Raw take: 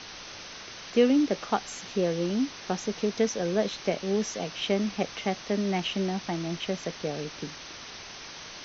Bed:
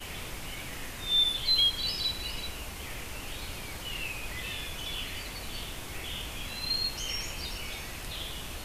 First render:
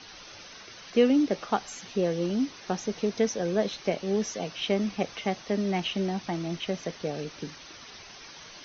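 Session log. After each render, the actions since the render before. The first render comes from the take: denoiser 8 dB, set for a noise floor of -43 dBFS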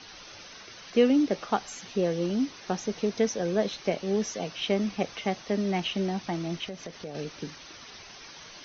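6.68–7.15 compressor 2.5:1, threshold -37 dBFS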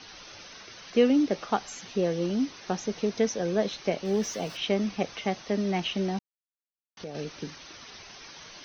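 4.05–4.57 zero-crossing step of -45 dBFS; 6.19–6.97 mute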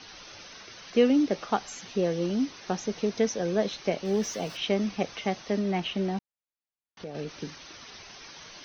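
5.59–7.29 high shelf 6200 Hz -11.5 dB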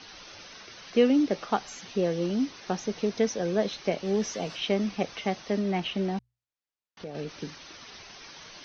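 LPF 6700 Hz 24 dB/oct; notches 60/120 Hz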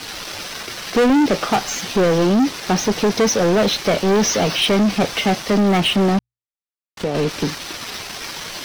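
sample leveller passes 5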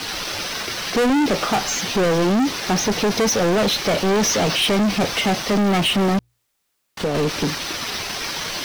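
power-law curve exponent 0.7; soft clip -14.5 dBFS, distortion -18 dB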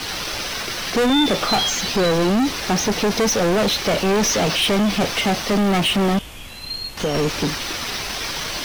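add bed +1.5 dB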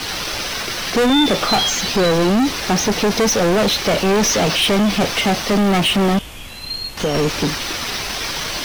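gain +2.5 dB

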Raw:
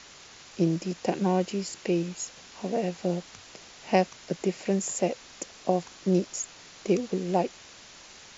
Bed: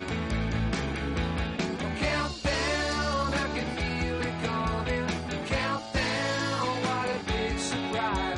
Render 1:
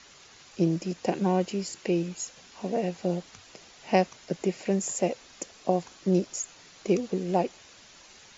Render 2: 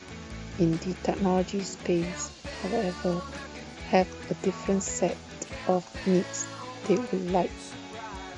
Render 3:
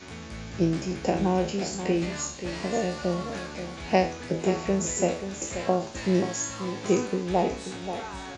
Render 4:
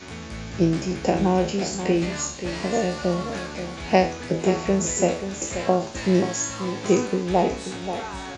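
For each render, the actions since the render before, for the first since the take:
denoiser 6 dB, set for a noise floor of -50 dBFS
add bed -11 dB
spectral trails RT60 0.41 s; echo 0.533 s -10 dB
gain +4 dB

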